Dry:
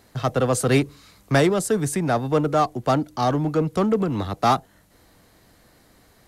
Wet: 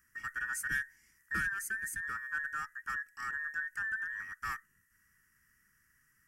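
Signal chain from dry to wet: band inversion scrambler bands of 2000 Hz; passive tone stack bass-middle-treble 6-0-2; fixed phaser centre 1600 Hz, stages 4; gain +4.5 dB

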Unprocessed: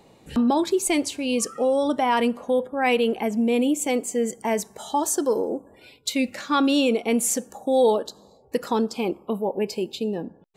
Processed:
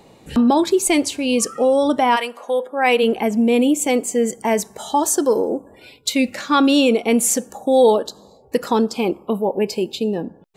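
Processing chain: 2.15–3.02 HPF 940 Hz -> 260 Hz 12 dB/oct; gain +5.5 dB

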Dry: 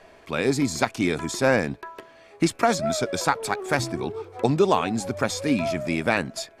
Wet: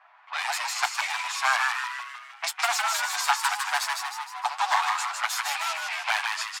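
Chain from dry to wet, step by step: minimum comb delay 8.1 ms; steep high-pass 740 Hz 72 dB/oct; low-pass opened by the level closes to 1500 Hz, open at -27.5 dBFS; frequency-shifting echo 0.155 s, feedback 50%, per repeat +120 Hz, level -3.5 dB; gain +2 dB

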